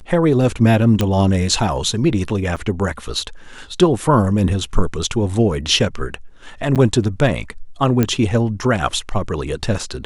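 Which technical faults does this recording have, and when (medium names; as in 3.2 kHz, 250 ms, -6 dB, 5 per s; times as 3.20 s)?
1.01 s: pop -4 dBFS
2.56–2.57 s: dropout 6.1 ms
6.75–6.76 s: dropout 7.8 ms
8.03 s: pop -4 dBFS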